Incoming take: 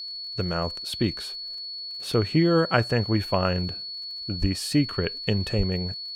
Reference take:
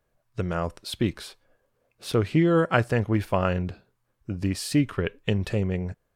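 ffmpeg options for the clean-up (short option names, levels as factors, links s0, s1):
-filter_complex "[0:a]adeclick=t=4,bandreject=f=4400:w=30,asplit=3[s0][s1][s2];[s0]afade=t=out:st=4.4:d=0.02[s3];[s1]highpass=f=140:w=0.5412,highpass=f=140:w=1.3066,afade=t=in:st=4.4:d=0.02,afade=t=out:st=4.52:d=0.02[s4];[s2]afade=t=in:st=4.52:d=0.02[s5];[s3][s4][s5]amix=inputs=3:normalize=0,asplit=3[s6][s7][s8];[s6]afade=t=out:st=5.57:d=0.02[s9];[s7]highpass=f=140:w=0.5412,highpass=f=140:w=1.3066,afade=t=in:st=5.57:d=0.02,afade=t=out:st=5.69:d=0.02[s10];[s8]afade=t=in:st=5.69:d=0.02[s11];[s9][s10][s11]amix=inputs=3:normalize=0"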